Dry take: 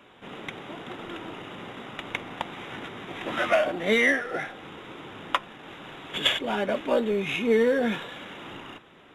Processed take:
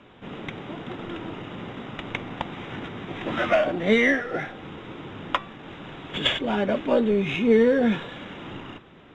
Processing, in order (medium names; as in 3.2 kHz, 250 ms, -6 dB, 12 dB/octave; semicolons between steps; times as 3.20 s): low-pass 5.8 kHz 12 dB/octave; bass shelf 290 Hz +10 dB; de-hum 385.6 Hz, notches 28